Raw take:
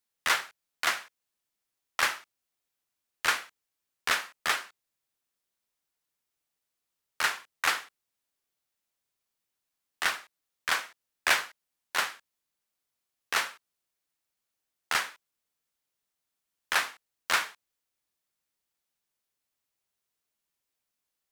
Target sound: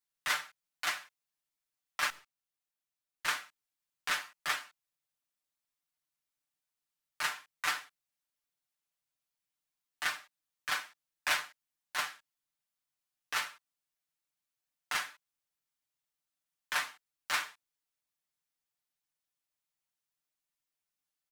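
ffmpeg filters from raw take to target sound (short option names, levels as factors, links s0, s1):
-filter_complex "[0:a]equalizer=f=420:t=o:w=0.75:g=-7,aecho=1:1:6.7:0.88,asettb=1/sr,asplit=3[s0][s1][s2];[s0]atrim=end=2.104[s3];[s1]atrim=start=2.1:end=3.25,asetpts=PTS-STARTPTS,afade=t=in:d=0.004:c=qsin,afade=t=out:st=1.146:d=0.004:c=qsin,aeval=exprs='(tanh(158*val(0)+0.65)-tanh(0.65))/158':c=same[s4];[s2]atrim=start=3.246[s5];[s3][s4]acrossfade=d=0.004:c1=hsin:c2=qsin[s6];[s6][s5]acrossfade=d=0.004:c1=qsin:c2=hsin,volume=0.398"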